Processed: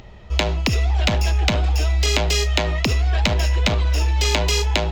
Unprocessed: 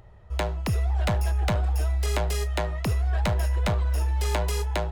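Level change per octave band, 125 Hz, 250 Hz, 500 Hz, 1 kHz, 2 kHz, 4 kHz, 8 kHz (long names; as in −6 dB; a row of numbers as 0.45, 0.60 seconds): +5.0, +7.0, +6.0, +5.0, +10.5, +15.0, +11.0 decibels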